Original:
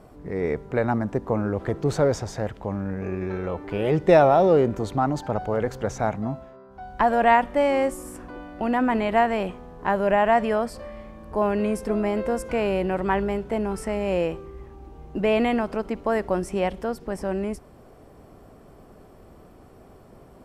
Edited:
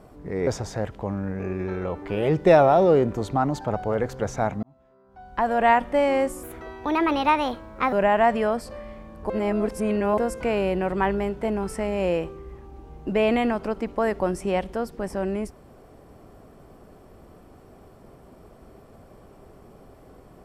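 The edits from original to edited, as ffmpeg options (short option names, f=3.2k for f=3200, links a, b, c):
-filter_complex "[0:a]asplit=7[a][b][c][d][e][f][g];[a]atrim=end=0.472[h];[b]atrim=start=2.088:end=6.25,asetpts=PTS-STARTPTS,afade=t=out:st=4.158:d=0.004:c=hsin[i];[c]atrim=start=6.25:end=8.054,asetpts=PTS-STARTPTS,afade=t=in:d=1.17[j];[d]atrim=start=8.05:end=10.01,asetpts=PTS-STARTPTS,asetrate=57771,aresample=44100[k];[e]atrim=start=10.006:end=11.382[l];[f]atrim=start=11.378:end=12.262,asetpts=PTS-STARTPTS,areverse[m];[g]atrim=start=12.258[n];[i][j]concat=n=2:v=0:a=1[o];[h][o]acrossfade=d=0.004:c1=hsin:c2=hsin[p];[p][k]acrossfade=d=0.004:c1=hsin:c2=hsin[q];[q][l]acrossfade=d=0.004:c1=hsin:c2=hsin[r];[r][m]acrossfade=d=0.004:c1=hsin:c2=hsin[s];[s][n]acrossfade=d=0.004:c1=hsin:c2=hsin"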